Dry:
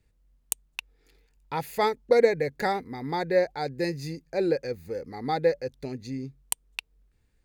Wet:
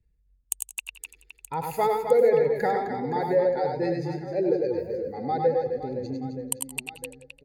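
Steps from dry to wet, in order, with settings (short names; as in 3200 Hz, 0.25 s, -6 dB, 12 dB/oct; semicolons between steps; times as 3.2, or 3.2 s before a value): spectral contrast raised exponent 1.5; reverse bouncing-ball echo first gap 0.1 s, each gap 1.6×, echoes 5; warbling echo 86 ms, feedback 51%, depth 78 cents, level -14 dB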